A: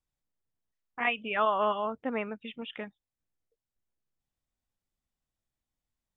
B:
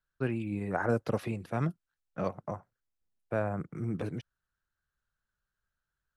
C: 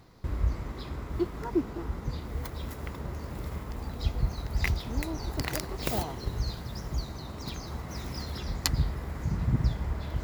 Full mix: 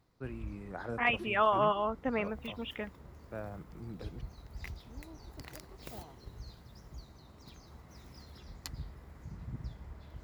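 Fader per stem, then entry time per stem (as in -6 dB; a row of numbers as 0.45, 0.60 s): -0.5, -11.0, -16.0 dB; 0.00, 0.00, 0.00 s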